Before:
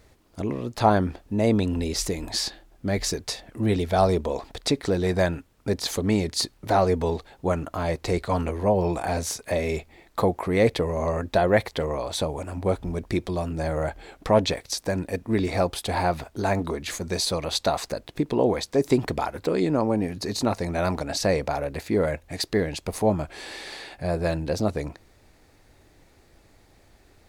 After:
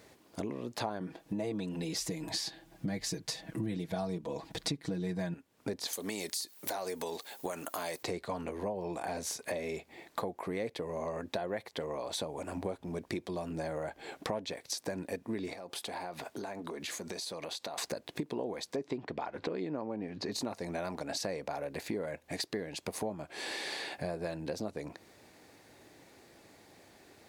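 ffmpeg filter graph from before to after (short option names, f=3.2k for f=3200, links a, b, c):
-filter_complex "[0:a]asettb=1/sr,asplit=3[a][b][c];[a]atrim=end=1.004[d];[b]atrim=start=1:end=5.34,asetpts=PTS-STARTPTS,afade=t=in:d=0.004:c=qsin,afade=t=out:st=4.336:d=0.004:c=qsin,asubboost=boost=5:cutoff=220,aecho=1:1:6.2:0.96,atrim=end_sample=191394[e];[c]atrim=start=5.336[f];[d][e]acrossfade=d=0.004:c1=hsin:c2=qsin[g];[g][f]acrossfade=d=0.004:c1=qsin:c2=hsin,asettb=1/sr,asplit=3[h][i][j];[h]atrim=end=5.934[k];[i]atrim=start=5.93:end=8.03,asetpts=PTS-STARTPTS,afade=t=in:d=0.004:c=qsin,afade=t=out:st=2.096:d=0.004:c=qsin,aemphasis=mode=production:type=riaa,acompressor=threshold=-24dB:ratio=5:attack=3.2:release=140:knee=1:detection=peak[l];[j]atrim=start=8.026[m];[k][l]acrossfade=d=0.004:c1=hsin:c2=qsin[n];[n][m]acrossfade=d=0.004:c1=qsin:c2=hsin,asettb=1/sr,asplit=3[o][p][q];[o]atrim=end=15.534[r];[p]atrim=start=15.53:end=17.78,asetpts=PTS-STARTPTS,afade=t=in:d=0.004:c=qsin,afade=t=out:st=2.246:d=0.004:c=qsin,highpass=f=190:p=1,acompressor=threshold=-36dB:ratio=20:attack=3.2:release=140:knee=1:detection=peak[s];[q]atrim=start=17.776[t];[r][s]acrossfade=d=0.004:c1=hsin:c2=qsin[u];[u][t]acrossfade=d=0.004:c1=qsin:c2=hsin,asettb=1/sr,asplit=3[v][w][x];[v]atrim=end=18.764[y];[w]atrim=start=18.76:end=20.32,asetpts=PTS-STARTPTS,afade=t=in:d=0.004:c=qsin,afade=t=out:st=1.556:d=0.004:c=qsin,lowpass=3.7k,acompressor=mode=upward:threshold=-28dB:ratio=2.5:attack=3.2:release=140:knee=2.83:detection=peak[z];[x]atrim=start=20.316[aa];[y][z]acrossfade=d=0.004:c1=hsin:c2=qsin[ab];[ab][aa]acrossfade=d=0.004:c1=qsin:c2=hsin,highpass=170,bandreject=f=1.3k:w=15,acompressor=threshold=-36dB:ratio=6,volume=1.5dB"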